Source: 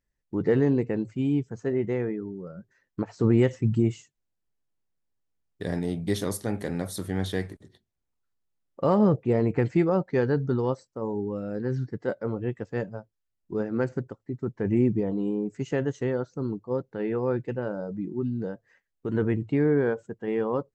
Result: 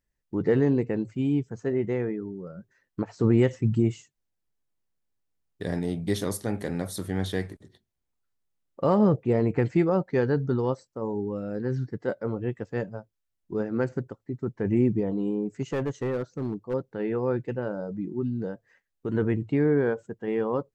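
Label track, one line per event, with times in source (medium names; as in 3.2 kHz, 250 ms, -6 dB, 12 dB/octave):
15.620000	16.740000	overload inside the chain gain 23.5 dB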